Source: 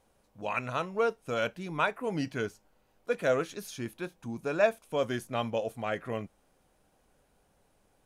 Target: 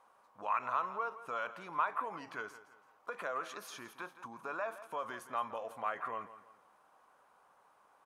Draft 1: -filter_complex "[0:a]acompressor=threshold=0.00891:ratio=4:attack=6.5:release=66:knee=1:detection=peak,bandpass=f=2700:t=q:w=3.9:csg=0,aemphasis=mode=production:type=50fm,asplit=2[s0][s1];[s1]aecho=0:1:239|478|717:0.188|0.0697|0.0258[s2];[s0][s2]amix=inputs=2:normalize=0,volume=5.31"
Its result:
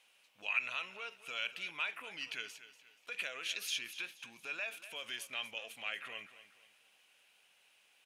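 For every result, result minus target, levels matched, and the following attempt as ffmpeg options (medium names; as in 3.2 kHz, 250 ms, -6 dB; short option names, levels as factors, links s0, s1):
1 kHz band -14.0 dB; echo 72 ms late
-filter_complex "[0:a]acompressor=threshold=0.00891:ratio=4:attack=6.5:release=66:knee=1:detection=peak,bandpass=f=1100:t=q:w=3.9:csg=0,aemphasis=mode=production:type=50fm,asplit=2[s0][s1];[s1]aecho=0:1:239|478|717:0.188|0.0697|0.0258[s2];[s0][s2]amix=inputs=2:normalize=0,volume=5.31"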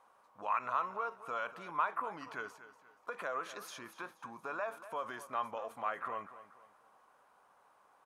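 echo 72 ms late
-filter_complex "[0:a]acompressor=threshold=0.00891:ratio=4:attack=6.5:release=66:knee=1:detection=peak,bandpass=f=1100:t=q:w=3.9:csg=0,aemphasis=mode=production:type=50fm,asplit=2[s0][s1];[s1]aecho=0:1:167|334|501:0.188|0.0697|0.0258[s2];[s0][s2]amix=inputs=2:normalize=0,volume=5.31"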